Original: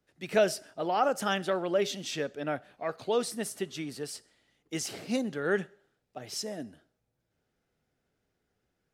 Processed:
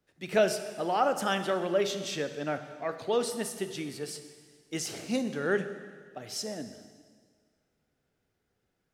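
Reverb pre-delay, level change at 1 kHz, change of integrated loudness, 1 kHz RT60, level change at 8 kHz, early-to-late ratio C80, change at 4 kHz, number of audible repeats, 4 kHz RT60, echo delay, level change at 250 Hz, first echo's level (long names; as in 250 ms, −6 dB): 25 ms, +0.5 dB, +0.5 dB, 1.7 s, +0.5 dB, 11.5 dB, +0.5 dB, no echo audible, 1.7 s, no echo audible, +0.5 dB, no echo audible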